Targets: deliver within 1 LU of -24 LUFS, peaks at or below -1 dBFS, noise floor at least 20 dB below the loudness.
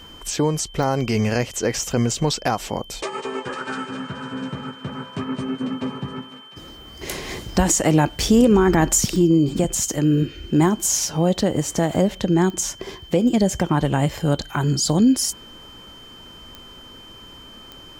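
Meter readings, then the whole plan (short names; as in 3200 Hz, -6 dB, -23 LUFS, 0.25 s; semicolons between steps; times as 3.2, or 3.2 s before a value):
clicks 6; steady tone 3100 Hz; tone level -42 dBFS; loudness -21.0 LUFS; peak -4.5 dBFS; loudness target -24.0 LUFS
-> de-click; notch 3100 Hz, Q 30; gain -3 dB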